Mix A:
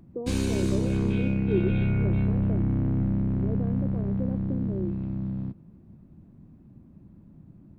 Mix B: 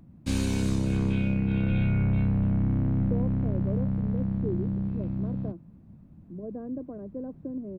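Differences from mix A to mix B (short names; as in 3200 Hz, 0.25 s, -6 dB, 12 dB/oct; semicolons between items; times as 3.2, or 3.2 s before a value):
speech: entry +2.95 s; master: add bell 370 Hz -8 dB 0.3 oct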